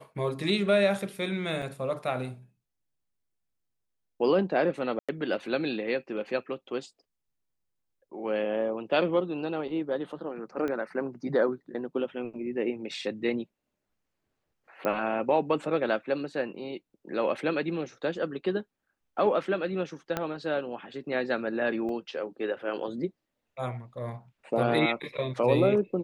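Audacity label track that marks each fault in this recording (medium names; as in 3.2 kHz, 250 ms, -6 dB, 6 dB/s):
1.620000	1.620000	dropout 4.8 ms
4.990000	5.090000	dropout 96 ms
10.680000	10.680000	pop -21 dBFS
14.850000	14.850000	pop -17 dBFS
20.170000	20.170000	pop -14 dBFS
21.890000	21.890000	dropout 2.2 ms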